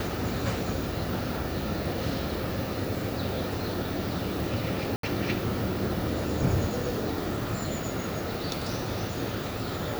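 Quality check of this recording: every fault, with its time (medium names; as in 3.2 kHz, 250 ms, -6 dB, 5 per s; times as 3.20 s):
4.96–5.03 s: dropout 73 ms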